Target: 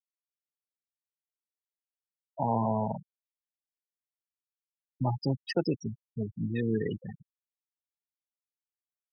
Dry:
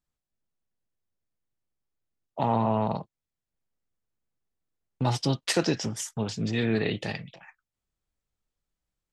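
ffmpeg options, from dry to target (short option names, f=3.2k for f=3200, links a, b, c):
-af "aeval=exprs='sgn(val(0))*max(abs(val(0))-0.00251,0)':c=same,afftfilt=real='re*gte(hypot(re,im),0.112)':imag='im*gte(hypot(re,im),0.112)':win_size=1024:overlap=0.75,volume=-2.5dB"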